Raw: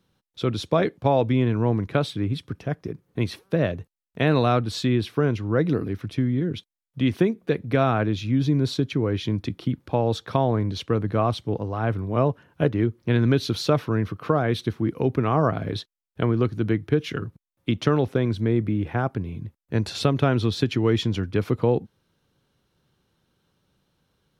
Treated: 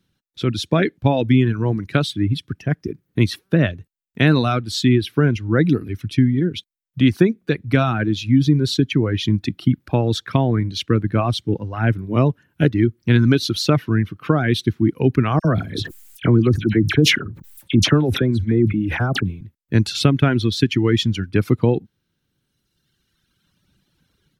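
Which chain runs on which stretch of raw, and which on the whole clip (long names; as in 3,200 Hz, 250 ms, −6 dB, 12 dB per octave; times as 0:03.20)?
0:15.39–0:19.41: dynamic equaliser 2,500 Hz, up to −5 dB, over −41 dBFS, Q 0.71 + all-pass dispersion lows, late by 56 ms, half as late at 2,000 Hz + level that may fall only so fast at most 61 dB per second
whole clip: reverb reduction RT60 2 s; flat-topped bell 720 Hz −8 dB; automatic gain control gain up to 8.5 dB; level +1 dB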